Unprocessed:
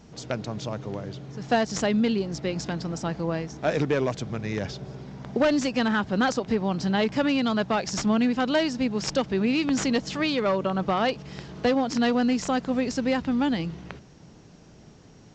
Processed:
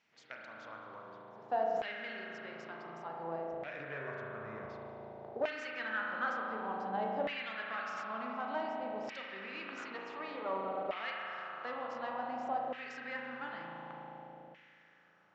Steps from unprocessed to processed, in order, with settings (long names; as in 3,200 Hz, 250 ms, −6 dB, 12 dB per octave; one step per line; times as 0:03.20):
0:03.51–0:04.70: RIAA equalisation playback
spring reverb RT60 3.8 s, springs 36 ms, chirp 40 ms, DRR −2.5 dB
auto-filter band-pass saw down 0.55 Hz 670–2,300 Hz
level −8 dB